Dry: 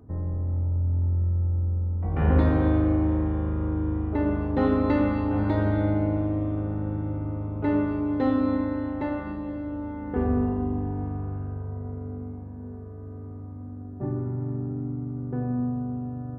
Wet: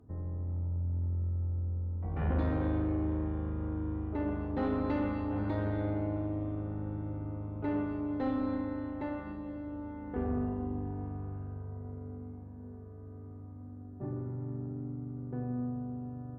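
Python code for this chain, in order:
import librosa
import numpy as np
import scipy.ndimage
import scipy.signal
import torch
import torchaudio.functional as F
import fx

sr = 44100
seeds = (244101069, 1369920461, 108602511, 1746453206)

y = fx.tube_stage(x, sr, drive_db=16.0, bias=0.35)
y = F.gain(torch.from_numpy(y), -7.0).numpy()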